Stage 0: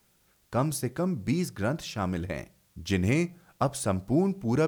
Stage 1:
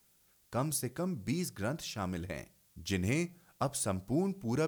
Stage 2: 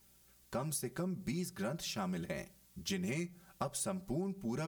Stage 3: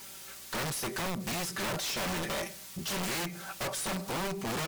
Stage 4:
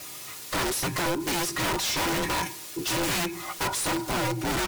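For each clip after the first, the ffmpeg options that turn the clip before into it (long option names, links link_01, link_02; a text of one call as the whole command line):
ffmpeg -i in.wav -af "highshelf=frequency=4200:gain=8,volume=-7dB" out.wav
ffmpeg -i in.wav -af "aecho=1:1:5.2:0.84,acompressor=threshold=-35dB:ratio=5,aeval=exprs='val(0)+0.000224*(sin(2*PI*60*n/s)+sin(2*PI*2*60*n/s)/2+sin(2*PI*3*60*n/s)/3+sin(2*PI*4*60*n/s)/4+sin(2*PI*5*60*n/s)/5)':channel_layout=same" out.wav
ffmpeg -i in.wav -filter_complex "[0:a]asplit=2[link_01][link_02];[link_02]adelay=18,volume=-13dB[link_03];[link_01][link_03]amix=inputs=2:normalize=0,asplit=2[link_04][link_05];[link_05]highpass=frequency=720:poles=1,volume=34dB,asoftclip=type=tanh:threshold=-23dB[link_06];[link_04][link_06]amix=inputs=2:normalize=0,lowpass=frequency=6100:poles=1,volume=-6dB,aeval=exprs='(mod(23.7*val(0)+1,2)-1)/23.7':channel_layout=same,volume=-3dB" out.wav
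ffmpeg -i in.wav -af "afftfilt=real='real(if(between(b,1,1008),(2*floor((b-1)/24)+1)*24-b,b),0)':imag='imag(if(between(b,1,1008),(2*floor((b-1)/24)+1)*24-b,b),0)*if(between(b,1,1008),-1,1)':win_size=2048:overlap=0.75,volume=6.5dB" out.wav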